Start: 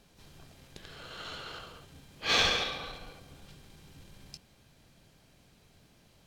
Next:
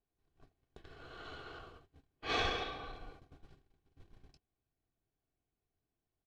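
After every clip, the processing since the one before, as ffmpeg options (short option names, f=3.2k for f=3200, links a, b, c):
-af "lowpass=f=1.2k:p=1,agate=range=-23dB:threshold=-51dB:ratio=16:detection=peak,aecho=1:1:2.7:0.53,volume=-3.5dB"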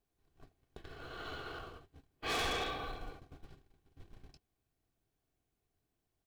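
-filter_complex "[0:a]asplit=2[a][b];[b]acrusher=bits=3:mode=log:mix=0:aa=0.000001,volume=-9.5dB[c];[a][c]amix=inputs=2:normalize=0,asoftclip=type=hard:threshold=-34.5dB,volume=2dB"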